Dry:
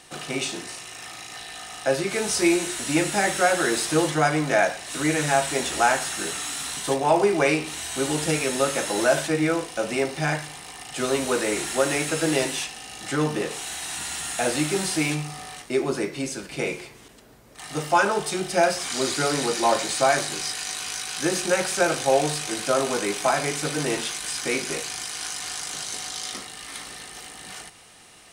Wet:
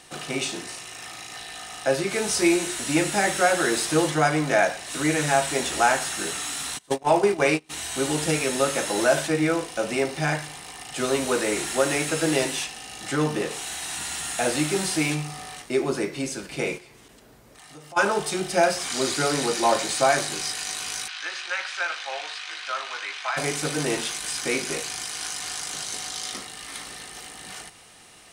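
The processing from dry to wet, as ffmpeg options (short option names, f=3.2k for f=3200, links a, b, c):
-filter_complex "[0:a]asplit=3[a][b][c];[a]afade=t=out:st=6.77:d=0.02[d];[b]agate=range=-27dB:threshold=-23dB:ratio=16:release=100:detection=peak,afade=t=in:st=6.77:d=0.02,afade=t=out:st=7.69:d=0.02[e];[c]afade=t=in:st=7.69:d=0.02[f];[d][e][f]amix=inputs=3:normalize=0,asplit=3[g][h][i];[g]afade=t=out:st=16.77:d=0.02[j];[h]acompressor=threshold=-47dB:ratio=3:attack=3.2:release=140:knee=1:detection=peak,afade=t=in:st=16.77:d=0.02,afade=t=out:st=17.96:d=0.02[k];[i]afade=t=in:st=17.96:d=0.02[l];[j][k][l]amix=inputs=3:normalize=0,asplit=3[m][n][o];[m]afade=t=out:st=21.07:d=0.02[p];[n]asuperpass=centerf=2200:order=4:qfactor=0.75,afade=t=in:st=21.07:d=0.02,afade=t=out:st=23.36:d=0.02[q];[o]afade=t=in:st=23.36:d=0.02[r];[p][q][r]amix=inputs=3:normalize=0"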